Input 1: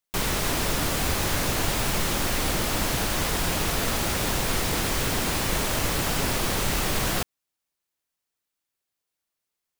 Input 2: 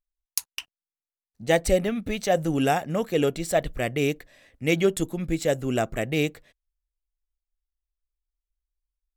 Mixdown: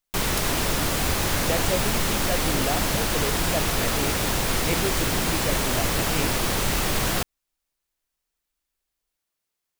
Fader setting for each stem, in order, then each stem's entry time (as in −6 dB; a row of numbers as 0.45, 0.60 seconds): +1.5, −7.0 decibels; 0.00, 0.00 seconds